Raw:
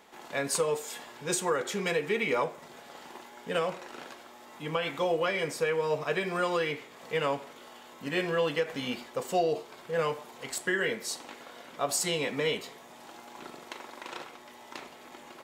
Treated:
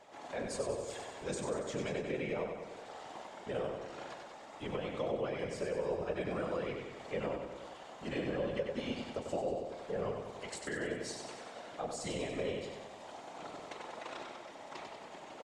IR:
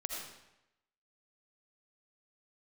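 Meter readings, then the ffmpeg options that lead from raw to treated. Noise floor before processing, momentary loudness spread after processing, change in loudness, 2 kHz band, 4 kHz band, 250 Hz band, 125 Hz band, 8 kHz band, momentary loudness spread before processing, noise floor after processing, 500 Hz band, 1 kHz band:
-51 dBFS, 11 LU, -9.0 dB, -11.5 dB, -11.0 dB, -4.0 dB, -4.0 dB, -12.5 dB, 19 LU, -51 dBFS, -6.5 dB, -8.5 dB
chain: -filter_complex "[0:a]lowpass=f=8.7k:w=0.5412,lowpass=f=8.7k:w=1.3066,equalizer=f=640:t=o:w=0.68:g=8.5,acrossover=split=360[a][b];[b]acompressor=threshold=-36dB:ratio=6[c];[a][c]amix=inputs=2:normalize=0,afftfilt=real='hypot(re,im)*cos(2*PI*random(0))':imag='hypot(re,im)*sin(2*PI*random(1))':win_size=512:overlap=0.75,aecho=1:1:95|190|285|380|475|570|665|760:0.531|0.313|0.185|0.109|0.0643|0.038|0.0224|0.0132,volume=1dB"

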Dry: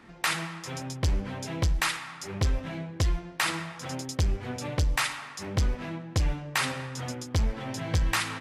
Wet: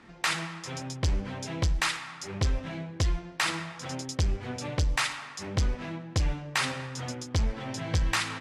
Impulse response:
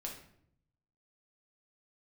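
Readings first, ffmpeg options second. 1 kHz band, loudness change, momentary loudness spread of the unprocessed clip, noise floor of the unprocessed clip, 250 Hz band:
-1.0 dB, -0.5 dB, 9 LU, -45 dBFS, -1.0 dB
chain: -af "lowpass=7.7k,highshelf=f=5.1k:g=4.5,volume=-1dB"

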